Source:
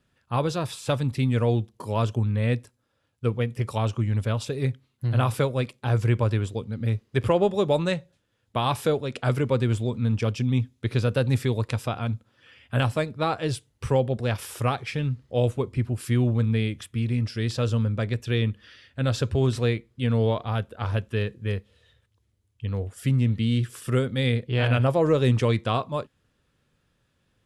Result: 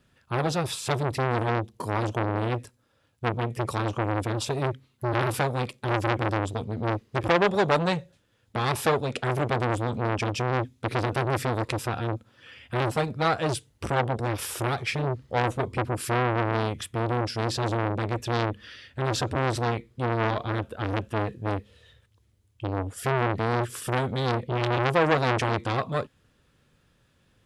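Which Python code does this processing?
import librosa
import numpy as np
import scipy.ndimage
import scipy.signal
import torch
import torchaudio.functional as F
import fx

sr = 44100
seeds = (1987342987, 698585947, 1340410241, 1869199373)

y = fx.transformer_sat(x, sr, knee_hz=2000.0)
y = y * 10.0 ** (5.0 / 20.0)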